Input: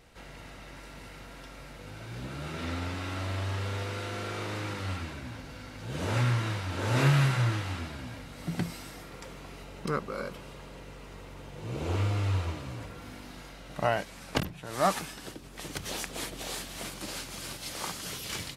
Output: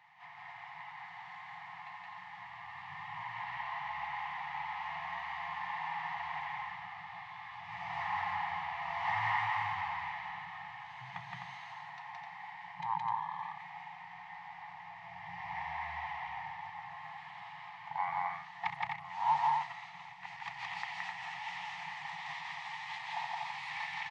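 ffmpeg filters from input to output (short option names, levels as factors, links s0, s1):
-filter_complex "[0:a]asplit=3[s0][s1][s2];[s0]bandpass=f=730:t=q:w=8,volume=1[s3];[s1]bandpass=f=1090:t=q:w=8,volume=0.501[s4];[s2]bandpass=f=2440:t=q:w=8,volume=0.355[s5];[s3][s4][s5]amix=inputs=3:normalize=0,acrossover=split=160 7900:gain=0.112 1 0.178[s6][s7][s8];[s6][s7][s8]amix=inputs=3:normalize=0,bandreject=f=60:t=h:w=6,bandreject=f=120:t=h:w=6,bandreject=f=180:t=h:w=6,bandreject=f=240:t=h:w=6,asplit=2[s9][s10];[s10]acompressor=threshold=0.00141:ratio=6,volume=1.06[s11];[s9][s11]amix=inputs=2:normalize=0,afftfilt=real='re*(1-between(b*sr/4096,240,890))':imag='im*(1-between(b*sr/4096,240,890))':win_size=4096:overlap=0.75,asetrate=33957,aresample=44100,asplit=2[s12][s13];[s13]aecho=0:1:169.1|256.6:0.891|0.562[s14];[s12][s14]amix=inputs=2:normalize=0,volume=2.82"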